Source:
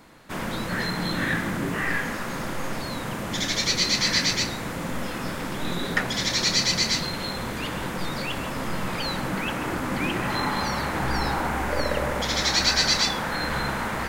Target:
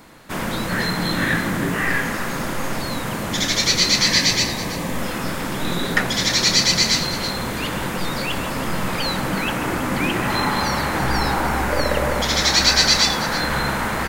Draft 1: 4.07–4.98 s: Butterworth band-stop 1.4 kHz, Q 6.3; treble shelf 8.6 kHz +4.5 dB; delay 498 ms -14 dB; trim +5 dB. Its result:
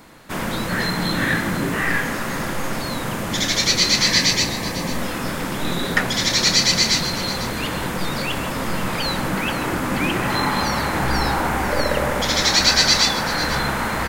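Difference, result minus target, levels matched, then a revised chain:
echo 173 ms late
4.07–4.98 s: Butterworth band-stop 1.4 kHz, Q 6.3; treble shelf 8.6 kHz +4.5 dB; delay 325 ms -14 dB; trim +5 dB

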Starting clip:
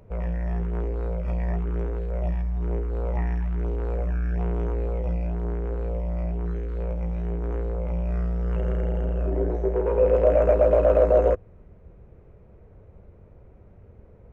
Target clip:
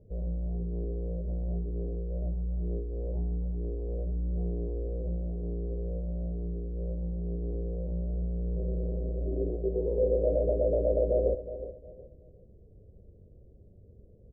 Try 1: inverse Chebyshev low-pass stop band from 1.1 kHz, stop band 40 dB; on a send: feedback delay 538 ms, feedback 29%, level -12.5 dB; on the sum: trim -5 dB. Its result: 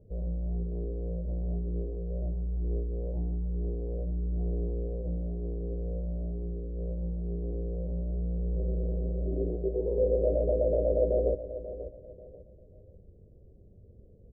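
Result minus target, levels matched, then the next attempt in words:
echo 172 ms late
inverse Chebyshev low-pass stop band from 1.1 kHz, stop band 40 dB; on a send: feedback delay 366 ms, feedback 29%, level -12.5 dB; on the sum: trim -5 dB

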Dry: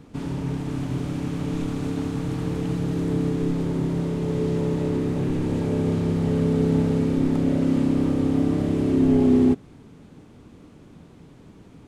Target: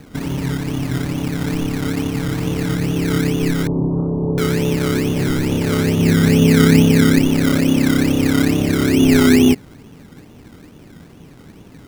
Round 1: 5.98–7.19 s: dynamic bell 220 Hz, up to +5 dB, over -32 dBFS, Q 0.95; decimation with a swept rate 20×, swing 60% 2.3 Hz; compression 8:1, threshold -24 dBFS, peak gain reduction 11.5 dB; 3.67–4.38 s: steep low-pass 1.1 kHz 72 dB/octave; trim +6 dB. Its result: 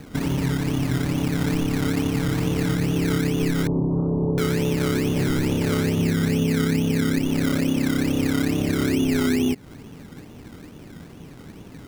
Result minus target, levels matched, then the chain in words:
compression: peak gain reduction +11.5 dB
5.98–7.19 s: dynamic bell 220 Hz, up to +5 dB, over -32 dBFS, Q 0.95; decimation with a swept rate 20×, swing 60% 2.3 Hz; 3.67–4.38 s: steep low-pass 1.1 kHz 72 dB/octave; trim +6 dB

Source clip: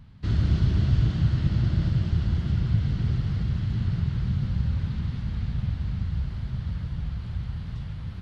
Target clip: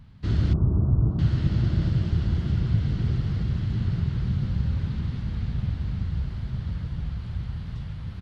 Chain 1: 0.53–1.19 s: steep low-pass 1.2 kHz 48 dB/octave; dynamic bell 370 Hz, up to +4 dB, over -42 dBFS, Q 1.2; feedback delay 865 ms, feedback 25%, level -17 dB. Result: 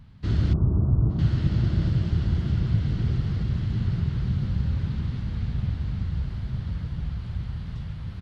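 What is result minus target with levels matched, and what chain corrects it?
echo-to-direct +12 dB
0.53–1.19 s: steep low-pass 1.2 kHz 48 dB/octave; dynamic bell 370 Hz, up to +4 dB, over -42 dBFS, Q 1.2; feedback delay 865 ms, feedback 25%, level -29 dB

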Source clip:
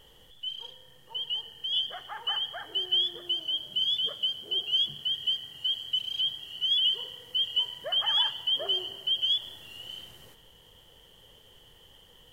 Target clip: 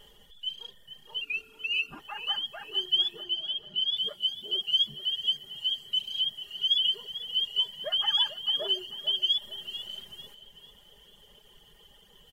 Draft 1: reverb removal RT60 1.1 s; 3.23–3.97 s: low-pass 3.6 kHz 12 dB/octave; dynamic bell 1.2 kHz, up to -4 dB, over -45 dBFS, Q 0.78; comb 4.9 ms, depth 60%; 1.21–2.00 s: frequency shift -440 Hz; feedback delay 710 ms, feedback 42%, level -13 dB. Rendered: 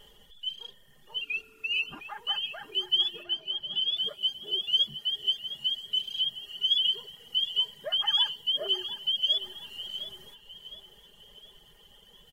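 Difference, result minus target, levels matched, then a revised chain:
echo 266 ms late
reverb removal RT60 1.1 s; 3.23–3.97 s: low-pass 3.6 kHz 12 dB/octave; dynamic bell 1.2 kHz, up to -4 dB, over -45 dBFS, Q 0.78; comb 4.9 ms, depth 60%; 1.21–2.00 s: frequency shift -440 Hz; feedback delay 444 ms, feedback 42%, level -13 dB

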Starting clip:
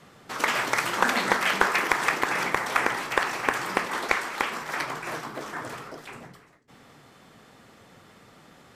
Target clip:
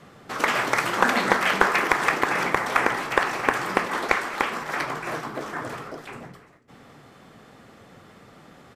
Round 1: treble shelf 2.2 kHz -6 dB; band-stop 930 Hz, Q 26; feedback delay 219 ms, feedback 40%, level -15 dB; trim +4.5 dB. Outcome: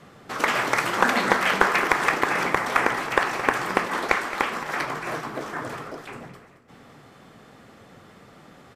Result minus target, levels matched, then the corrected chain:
echo-to-direct +10 dB
treble shelf 2.2 kHz -6 dB; band-stop 930 Hz, Q 26; feedback delay 219 ms, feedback 40%, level -25 dB; trim +4.5 dB

